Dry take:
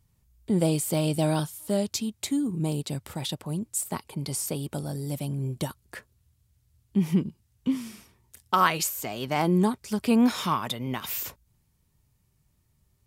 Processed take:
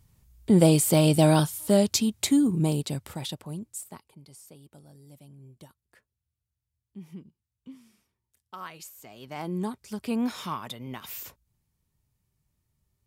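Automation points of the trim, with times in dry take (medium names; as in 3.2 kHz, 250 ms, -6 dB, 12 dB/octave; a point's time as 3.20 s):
2.43 s +5.5 dB
3.71 s -7 dB
4.25 s -19.5 dB
8.59 s -19.5 dB
9.74 s -7 dB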